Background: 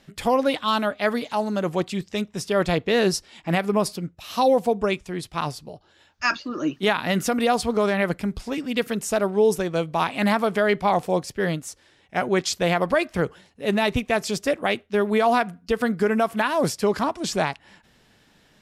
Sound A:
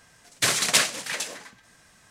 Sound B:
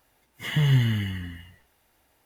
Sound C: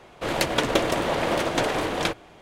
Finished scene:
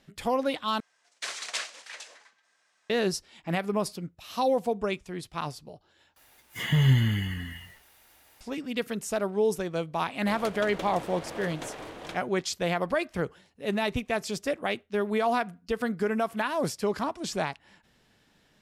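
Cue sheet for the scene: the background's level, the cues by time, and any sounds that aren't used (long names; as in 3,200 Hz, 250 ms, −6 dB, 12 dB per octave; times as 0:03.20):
background −6.5 dB
0:00.80: overwrite with A −11.5 dB + band-pass filter 580–6,800 Hz
0:06.16: overwrite with B −0.5 dB + one half of a high-frequency compander encoder only
0:10.04: mix in C −15.5 dB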